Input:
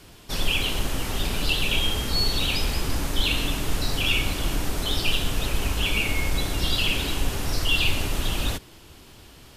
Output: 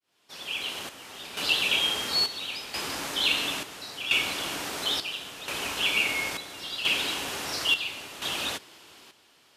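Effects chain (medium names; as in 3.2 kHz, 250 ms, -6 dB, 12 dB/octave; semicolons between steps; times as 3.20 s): fade-in on the opening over 1.38 s; frequency weighting A; square tremolo 0.73 Hz, depth 65%, duty 65%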